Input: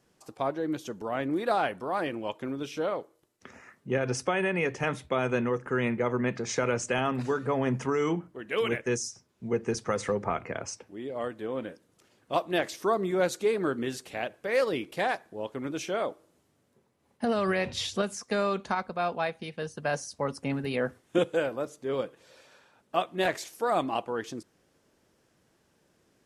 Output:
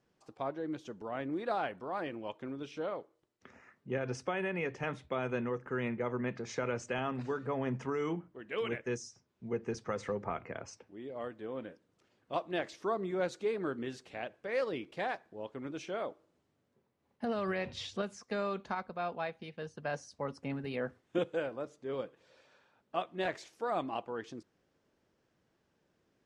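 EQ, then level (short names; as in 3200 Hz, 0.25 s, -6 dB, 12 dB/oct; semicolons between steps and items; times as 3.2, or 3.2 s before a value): air absorption 89 m; -7.0 dB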